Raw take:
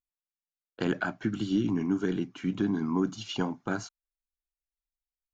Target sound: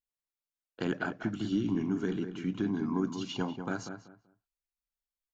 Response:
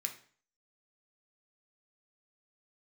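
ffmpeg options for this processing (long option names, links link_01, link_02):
-filter_complex "[0:a]asplit=2[link_01][link_02];[link_02]adelay=192,lowpass=frequency=1800:poles=1,volume=-7.5dB,asplit=2[link_03][link_04];[link_04]adelay=192,lowpass=frequency=1800:poles=1,volume=0.23,asplit=2[link_05][link_06];[link_06]adelay=192,lowpass=frequency=1800:poles=1,volume=0.23[link_07];[link_01][link_03][link_05][link_07]amix=inputs=4:normalize=0,volume=-3.5dB"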